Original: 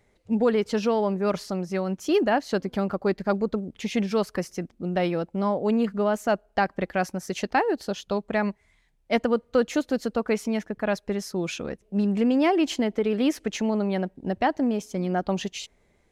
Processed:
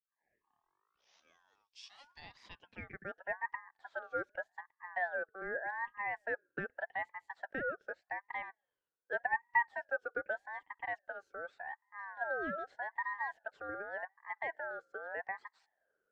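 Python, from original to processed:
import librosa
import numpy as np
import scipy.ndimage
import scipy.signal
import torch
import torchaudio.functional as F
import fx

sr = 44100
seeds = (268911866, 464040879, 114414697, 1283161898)

y = fx.tape_start_head(x, sr, length_s=2.95)
y = fx.filter_sweep_bandpass(y, sr, from_hz=4600.0, to_hz=520.0, start_s=2.02, end_s=3.26, q=5.0)
y = fx.ring_lfo(y, sr, carrier_hz=1200.0, swing_pct=20, hz=0.84)
y = y * librosa.db_to_amplitude(-3.5)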